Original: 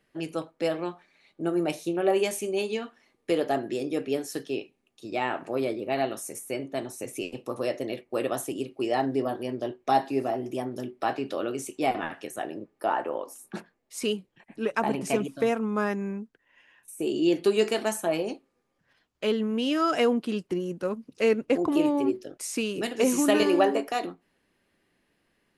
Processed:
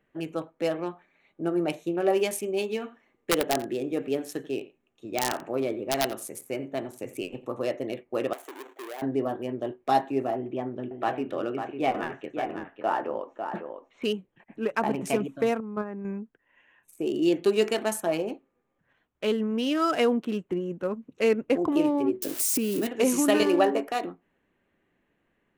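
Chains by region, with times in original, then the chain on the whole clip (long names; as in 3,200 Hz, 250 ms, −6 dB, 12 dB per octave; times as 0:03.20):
0:02.68–0:07.52: wrap-around overflow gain 15.5 dB + log-companded quantiser 8 bits + single-tap delay 87 ms −16.5 dB
0:08.33–0:09.02: each half-wave held at its own peak + high-pass filter 370 Hz 24 dB per octave + downward compressor 2.5 to 1, threshold −42 dBFS
0:10.36–0:14.04: low-pass filter 3,800 Hz 24 dB per octave + single-tap delay 549 ms −7 dB
0:15.60–0:16.05: low-pass filter 1,000 Hz 6 dB per octave + output level in coarse steps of 9 dB
0:22.22–0:22.87: spike at every zero crossing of −24 dBFS + parametric band 280 Hz +12.5 dB 1.3 octaves + downward compressor 3 to 1, threshold −25 dBFS
whole clip: adaptive Wiener filter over 9 samples; high-shelf EQ 6,700 Hz +4.5 dB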